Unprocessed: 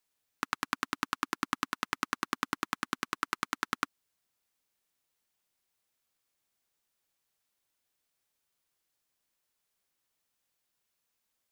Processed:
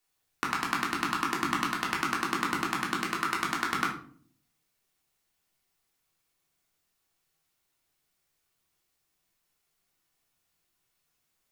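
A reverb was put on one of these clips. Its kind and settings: simulated room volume 520 m³, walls furnished, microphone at 3.4 m

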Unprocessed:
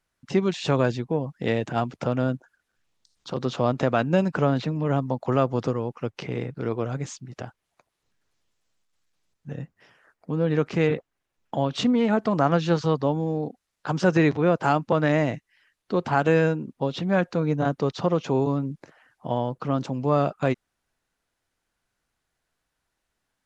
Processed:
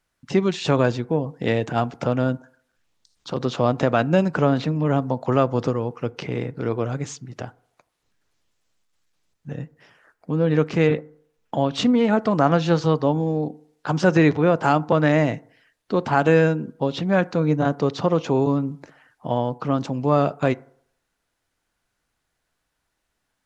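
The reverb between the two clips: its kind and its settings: FDN reverb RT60 0.63 s, low-frequency decay 0.8×, high-frequency decay 0.35×, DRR 18 dB; trim +3 dB

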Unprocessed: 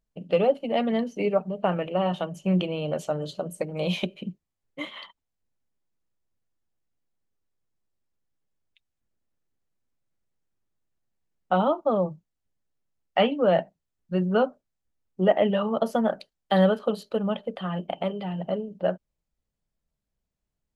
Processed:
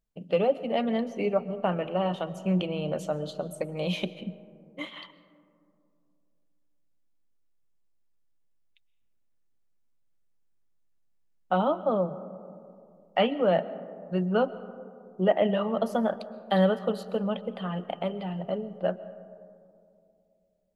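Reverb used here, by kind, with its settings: algorithmic reverb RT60 2.6 s, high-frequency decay 0.25×, pre-delay 90 ms, DRR 15.5 dB; trim -2.5 dB

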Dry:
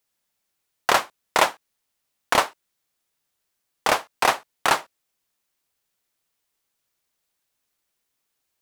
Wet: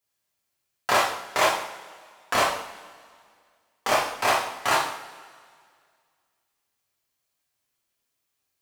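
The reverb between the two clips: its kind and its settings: two-slope reverb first 0.62 s, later 2.1 s, from -17 dB, DRR -6.5 dB; trim -8.5 dB

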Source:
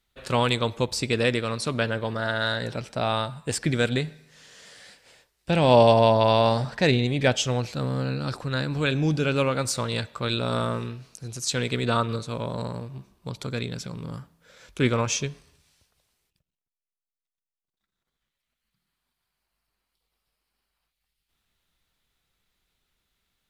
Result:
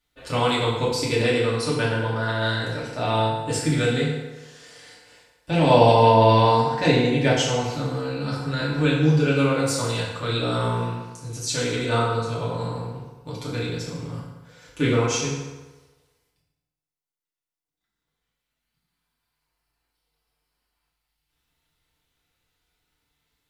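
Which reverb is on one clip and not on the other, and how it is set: FDN reverb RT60 1.2 s, low-frequency decay 0.8×, high-frequency decay 0.7×, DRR -7 dB; trim -5.5 dB

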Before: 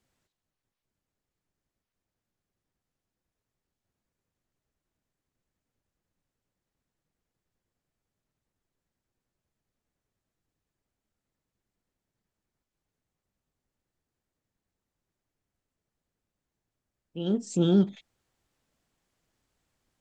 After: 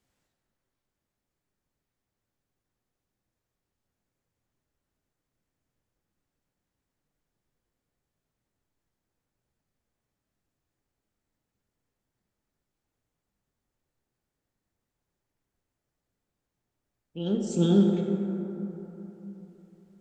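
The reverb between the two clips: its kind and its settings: plate-style reverb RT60 3.7 s, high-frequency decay 0.35×, DRR 1 dB; trim -1 dB

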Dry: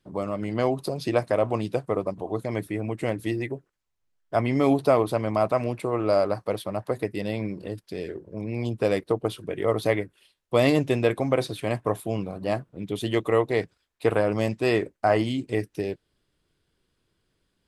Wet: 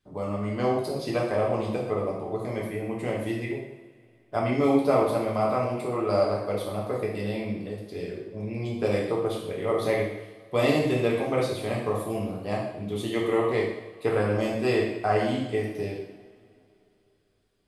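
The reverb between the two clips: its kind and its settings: two-slope reverb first 0.84 s, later 3.1 s, from -21 dB, DRR -3.5 dB; trim -6 dB

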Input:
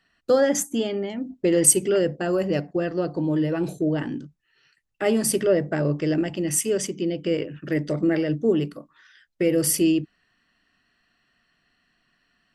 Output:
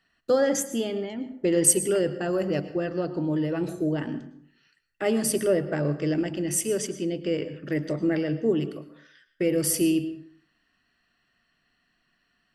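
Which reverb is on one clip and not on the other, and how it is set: plate-style reverb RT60 0.59 s, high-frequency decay 0.65×, pre-delay 95 ms, DRR 12.5 dB; trim -3 dB

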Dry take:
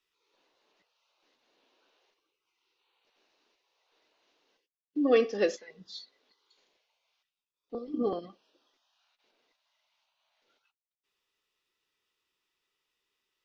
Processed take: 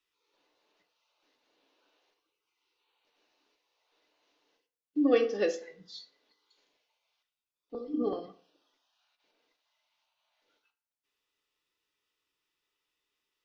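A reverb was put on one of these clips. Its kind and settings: FDN reverb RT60 0.51 s, low-frequency decay 0.9×, high-frequency decay 0.65×, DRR 7 dB; trim -2.5 dB

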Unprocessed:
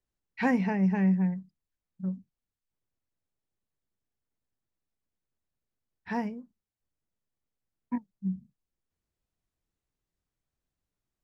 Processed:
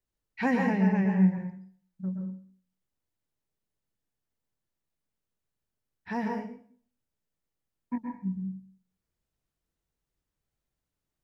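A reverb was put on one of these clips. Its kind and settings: plate-style reverb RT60 0.51 s, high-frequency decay 0.9×, pre-delay 110 ms, DRR 1.5 dB; trim -1 dB

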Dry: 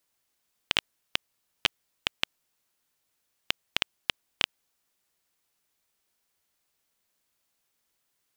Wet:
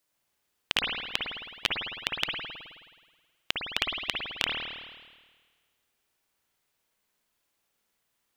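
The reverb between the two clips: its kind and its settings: spring tank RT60 1.5 s, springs 53 ms, chirp 50 ms, DRR -1.5 dB; trim -1.5 dB

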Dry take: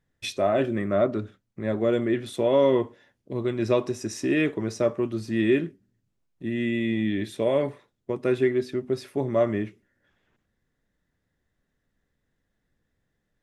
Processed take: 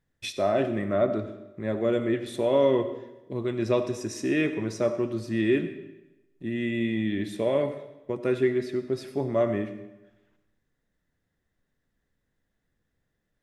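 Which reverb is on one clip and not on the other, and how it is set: algorithmic reverb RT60 1 s, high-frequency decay 0.9×, pre-delay 35 ms, DRR 10.5 dB; trim -2 dB

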